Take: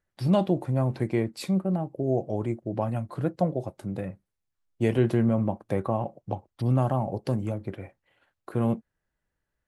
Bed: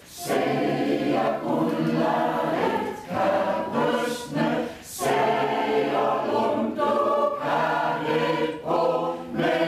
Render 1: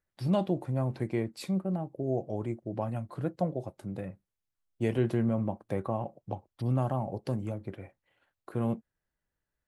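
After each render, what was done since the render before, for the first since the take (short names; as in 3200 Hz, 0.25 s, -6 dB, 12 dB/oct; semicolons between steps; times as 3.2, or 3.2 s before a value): gain -5 dB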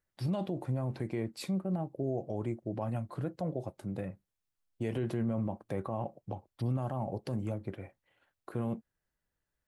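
limiter -25 dBFS, peak gain reduction 9.5 dB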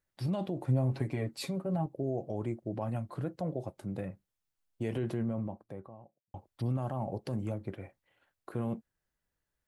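0.67–1.86 comb 7.3 ms, depth 91%; 4.96–6.34 studio fade out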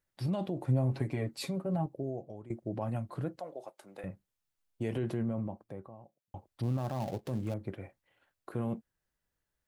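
1.84–2.5 fade out, to -18 dB; 3.39–4.04 HPF 620 Hz; 6.63–7.54 switching dead time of 0.14 ms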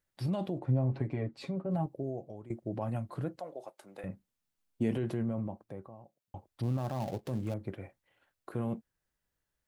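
0.59–1.71 tape spacing loss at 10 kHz 20 dB; 4.09–4.95 bell 230 Hz +8.5 dB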